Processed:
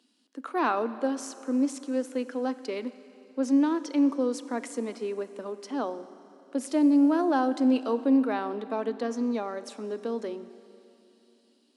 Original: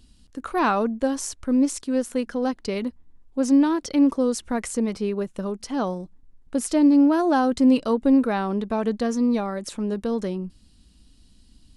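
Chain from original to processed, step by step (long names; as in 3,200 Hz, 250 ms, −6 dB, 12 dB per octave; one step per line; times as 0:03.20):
Butterworth high-pass 240 Hz 48 dB per octave
high-shelf EQ 7,000 Hz −10 dB
convolution reverb RT60 3.1 s, pre-delay 30 ms, DRR 13.5 dB
level −4.5 dB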